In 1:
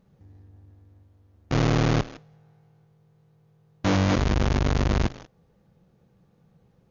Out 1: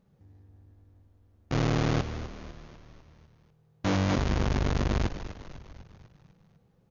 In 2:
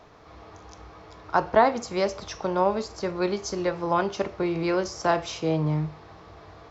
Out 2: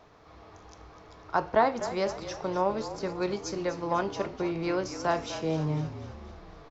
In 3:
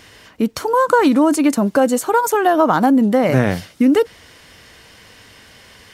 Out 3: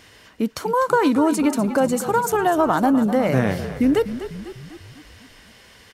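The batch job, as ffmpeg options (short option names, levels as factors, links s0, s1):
-filter_complex "[0:a]asplit=7[s0][s1][s2][s3][s4][s5][s6];[s1]adelay=249,afreqshift=-39,volume=0.251[s7];[s2]adelay=498,afreqshift=-78,volume=0.141[s8];[s3]adelay=747,afreqshift=-117,volume=0.0785[s9];[s4]adelay=996,afreqshift=-156,volume=0.0442[s10];[s5]adelay=1245,afreqshift=-195,volume=0.0248[s11];[s6]adelay=1494,afreqshift=-234,volume=0.0138[s12];[s0][s7][s8][s9][s10][s11][s12]amix=inputs=7:normalize=0,volume=0.596"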